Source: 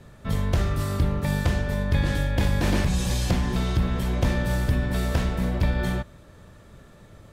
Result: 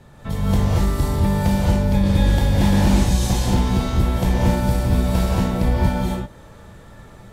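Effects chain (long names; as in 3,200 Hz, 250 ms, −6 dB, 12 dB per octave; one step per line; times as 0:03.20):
parametric band 850 Hz +7 dB 0.28 octaves
reverb whose tail is shaped and stops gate 260 ms rising, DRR −5 dB
dynamic equaliser 1,700 Hz, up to −5 dB, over −38 dBFS, Q 0.71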